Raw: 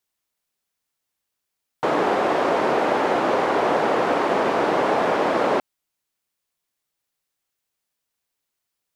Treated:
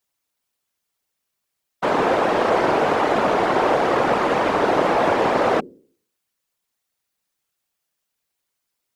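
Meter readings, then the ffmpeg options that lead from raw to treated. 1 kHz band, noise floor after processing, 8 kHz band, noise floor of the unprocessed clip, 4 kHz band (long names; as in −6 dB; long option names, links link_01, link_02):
+2.0 dB, −79 dBFS, +2.0 dB, −81 dBFS, +2.0 dB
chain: -af "bandreject=frequency=73.38:width_type=h:width=4,bandreject=frequency=146.76:width_type=h:width=4,bandreject=frequency=220.14:width_type=h:width=4,bandreject=frequency=293.52:width_type=h:width=4,bandreject=frequency=366.9:width_type=h:width=4,bandreject=frequency=440.28:width_type=h:width=4,afftfilt=real='hypot(re,im)*cos(2*PI*random(0))':imag='hypot(re,im)*sin(2*PI*random(1))':win_size=512:overlap=0.75,volume=8dB"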